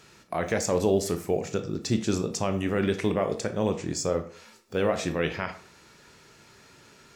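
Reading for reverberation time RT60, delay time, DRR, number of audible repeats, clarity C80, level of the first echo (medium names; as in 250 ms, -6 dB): 0.50 s, no echo, 7.0 dB, no echo, 16.0 dB, no echo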